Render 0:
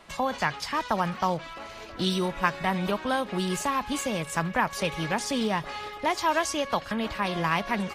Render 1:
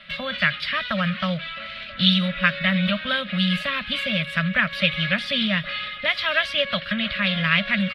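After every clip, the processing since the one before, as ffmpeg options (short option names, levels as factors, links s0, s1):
-af "firequalizer=gain_entry='entry(110,0);entry(190,9);entry(390,-28);entry(570,6);entry(840,-20);entry(1300,6);entry(2000,11);entry(3600,14);entry(6600,-22);entry(10000,-12)':delay=0.05:min_phase=1"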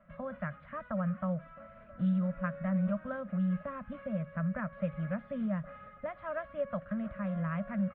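-af "lowpass=f=1100:w=0.5412,lowpass=f=1100:w=1.3066,volume=0.422"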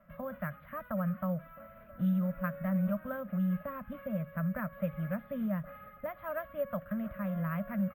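-af "acrusher=samples=3:mix=1:aa=0.000001"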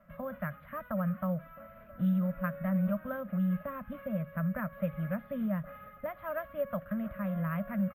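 -af "aresample=32000,aresample=44100,volume=1.12"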